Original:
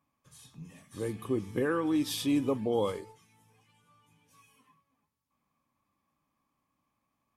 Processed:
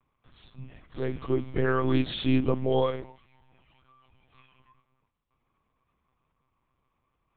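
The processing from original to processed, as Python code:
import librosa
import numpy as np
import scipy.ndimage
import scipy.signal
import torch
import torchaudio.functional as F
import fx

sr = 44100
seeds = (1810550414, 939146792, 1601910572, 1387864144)

y = fx.lpc_monotone(x, sr, seeds[0], pitch_hz=130.0, order=10)
y = F.gain(torch.from_numpy(y), 4.5).numpy()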